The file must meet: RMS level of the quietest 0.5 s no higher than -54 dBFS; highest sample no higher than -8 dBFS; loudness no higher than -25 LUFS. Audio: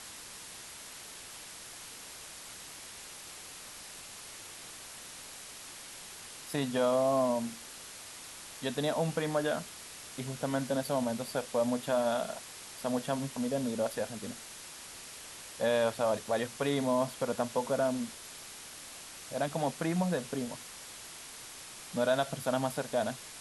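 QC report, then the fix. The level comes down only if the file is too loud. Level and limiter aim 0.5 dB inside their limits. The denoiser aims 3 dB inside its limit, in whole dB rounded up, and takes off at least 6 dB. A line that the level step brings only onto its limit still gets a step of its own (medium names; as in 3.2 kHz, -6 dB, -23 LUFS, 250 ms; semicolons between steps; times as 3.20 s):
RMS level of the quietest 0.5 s -47 dBFS: fail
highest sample -17.5 dBFS: pass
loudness -35.0 LUFS: pass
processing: noise reduction 10 dB, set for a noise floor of -47 dBFS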